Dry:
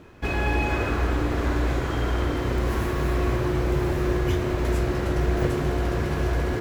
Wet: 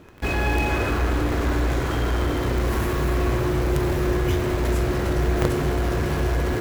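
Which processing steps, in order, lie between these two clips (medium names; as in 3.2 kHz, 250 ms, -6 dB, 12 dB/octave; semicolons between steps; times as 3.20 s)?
treble shelf 9.1 kHz +5.5 dB; in parallel at -10 dB: companded quantiser 2-bit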